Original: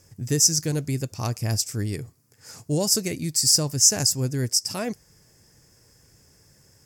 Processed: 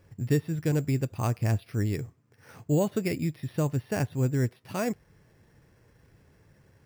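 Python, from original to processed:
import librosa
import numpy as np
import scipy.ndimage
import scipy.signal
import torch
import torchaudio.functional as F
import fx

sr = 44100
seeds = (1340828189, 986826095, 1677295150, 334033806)

y = np.repeat(scipy.signal.resample_poly(x, 1, 6), 6)[:len(x)]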